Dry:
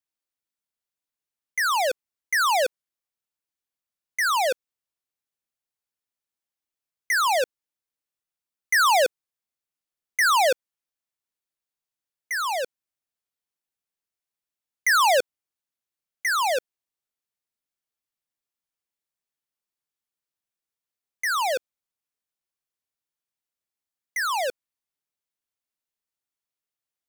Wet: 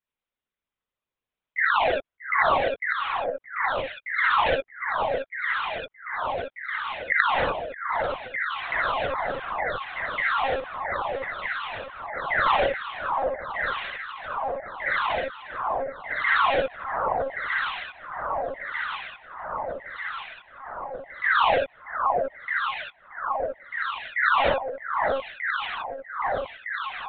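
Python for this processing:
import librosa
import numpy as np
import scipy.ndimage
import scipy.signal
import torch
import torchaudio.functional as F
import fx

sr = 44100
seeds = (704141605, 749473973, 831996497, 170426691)

y = scipy.signal.sosfilt(scipy.signal.butter(4, 69.0, 'highpass', fs=sr, output='sos'), x)
y = fx.high_shelf(y, sr, hz=2700.0, db=-4.0)
y = fx.over_compress(y, sr, threshold_db=-25.0, ratio=-1.0)
y = fx.echo_alternate(y, sr, ms=624, hz=1200.0, feedback_pct=83, wet_db=-2.5)
y = y * np.sin(2.0 * np.pi * 57.0 * np.arange(len(y)) / sr)
y = fx.rev_gated(y, sr, seeds[0], gate_ms=90, shape='rising', drr_db=-1.5)
y = fx.lpc_monotone(y, sr, seeds[1], pitch_hz=270.0, order=16)
y = y * 10.0 ** (2.5 / 20.0)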